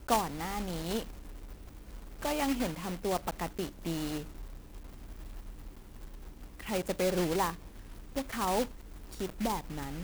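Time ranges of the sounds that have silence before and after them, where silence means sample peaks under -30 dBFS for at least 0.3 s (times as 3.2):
2.23–4.2
6.69–7.5
8.17–8.64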